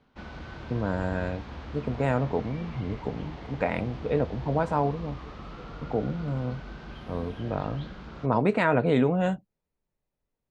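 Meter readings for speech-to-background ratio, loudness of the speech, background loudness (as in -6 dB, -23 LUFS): 13.0 dB, -29.0 LUFS, -42.0 LUFS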